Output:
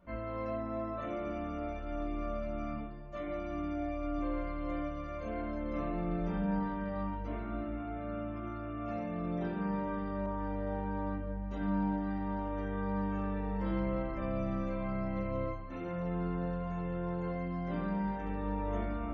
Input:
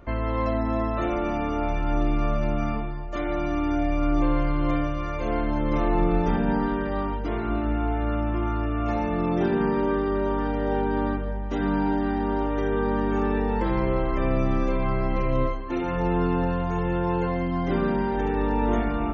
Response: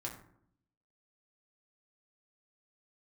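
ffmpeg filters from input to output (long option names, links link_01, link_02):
-filter_complex "[1:a]atrim=start_sample=2205,asetrate=74970,aresample=44100[link_01];[0:a][link_01]afir=irnorm=-1:irlink=0,asettb=1/sr,asplit=3[link_02][link_03][link_04];[link_02]atrim=end=10.264[link_05];[link_03]atrim=start=10.26:end=12.11,asetpts=PTS-STARTPTS,afade=type=in:duration=0.004:curve=qsin,afade=type=out:start_time=1.846:duration=0.004:curve=qsin,adynamicequalizer=threshold=0.00708:dfrequency=2000:dqfactor=0.7:tfrequency=2000:tqfactor=0.7:attack=5:release=100:ratio=0.375:range=2:mode=cutabove:tftype=highshelf[link_06];[link_04]atrim=start=12.106[link_07];[link_05][link_06]acrossfade=duration=0.004:curve1=hsin:curve2=qsin[link_08];[link_08][link_07]acrossfade=duration=0.004:curve1=qsin:curve2=hsin,volume=-8dB"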